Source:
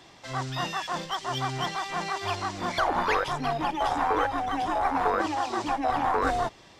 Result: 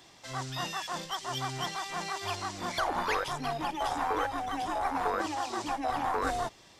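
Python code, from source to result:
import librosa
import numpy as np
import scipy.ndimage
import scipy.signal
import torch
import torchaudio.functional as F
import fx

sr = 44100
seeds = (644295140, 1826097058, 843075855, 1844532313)

y = fx.high_shelf(x, sr, hz=5700.0, db=11.0)
y = F.gain(torch.from_numpy(y), -5.5).numpy()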